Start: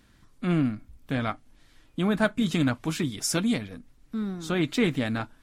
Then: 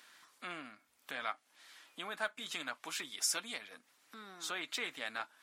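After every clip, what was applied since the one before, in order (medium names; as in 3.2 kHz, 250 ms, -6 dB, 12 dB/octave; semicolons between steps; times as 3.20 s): compression 2:1, threshold -44 dBFS, peak gain reduction 14.5 dB; high-pass 900 Hz 12 dB/octave; trim +5.5 dB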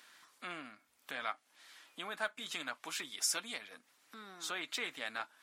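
no audible change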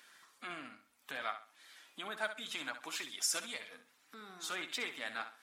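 coarse spectral quantiser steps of 15 dB; on a send: flutter echo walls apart 11.2 m, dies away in 0.37 s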